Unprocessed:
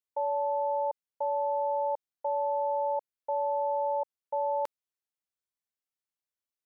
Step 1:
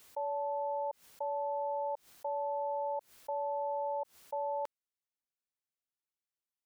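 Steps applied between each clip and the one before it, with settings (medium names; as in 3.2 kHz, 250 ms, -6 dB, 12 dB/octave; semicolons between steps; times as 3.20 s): swell ahead of each attack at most 140 dB/s; trim -6 dB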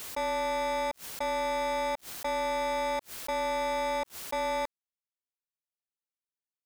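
waveshaping leveller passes 5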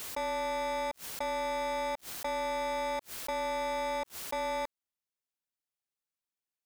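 compression 2:1, threshold -35 dBFS, peak gain reduction 3 dB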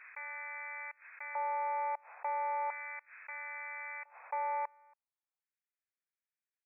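speakerphone echo 280 ms, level -22 dB; LFO high-pass square 0.37 Hz 820–1700 Hz; FFT band-pass 450–2600 Hz; trim -6 dB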